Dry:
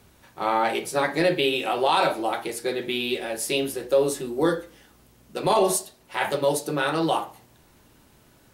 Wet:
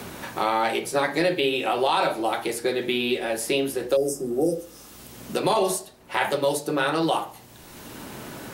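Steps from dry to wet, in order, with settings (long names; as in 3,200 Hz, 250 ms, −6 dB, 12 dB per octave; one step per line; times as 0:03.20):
healed spectral selection 0:03.99–0:04.89, 800–4,800 Hz after
mains-hum notches 50/100/150 Hz
multiband upward and downward compressor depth 70%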